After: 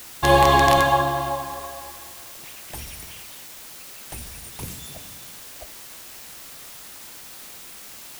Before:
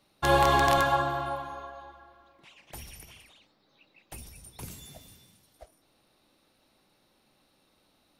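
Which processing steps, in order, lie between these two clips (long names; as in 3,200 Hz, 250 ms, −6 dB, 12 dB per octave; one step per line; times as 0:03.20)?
notch filter 1,400 Hz, Q 7
bit-depth reduction 8 bits, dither triangular
level +7 dB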